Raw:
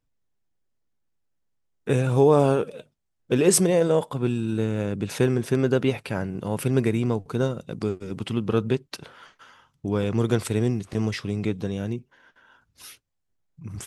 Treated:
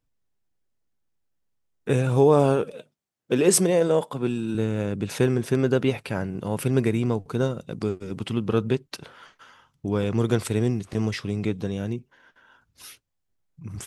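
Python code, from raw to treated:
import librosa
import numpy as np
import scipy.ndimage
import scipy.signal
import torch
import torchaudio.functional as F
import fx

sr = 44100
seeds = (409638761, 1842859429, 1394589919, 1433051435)

y = fx.highpass(x, sr, hz=150.0, slope=12, at=(2.72, 4.55))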